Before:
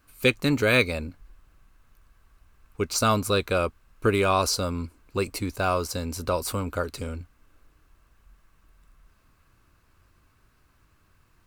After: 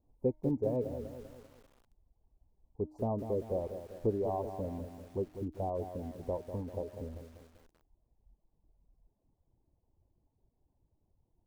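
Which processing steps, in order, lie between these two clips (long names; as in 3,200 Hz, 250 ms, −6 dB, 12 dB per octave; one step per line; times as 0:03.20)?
elliptic low-pass filter 860 Hz, stop band 40 dB
reverb reduction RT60 1 s
hum removal 307.1 Hz, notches 7
feedback echo at a low word length 196 ms, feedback 55%, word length 8 bits, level −9 dB
level −7.5 dB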